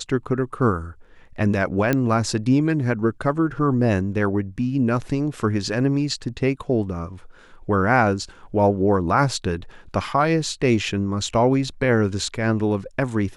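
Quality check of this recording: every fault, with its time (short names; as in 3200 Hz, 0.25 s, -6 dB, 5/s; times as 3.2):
1.93 pop -8 dBFS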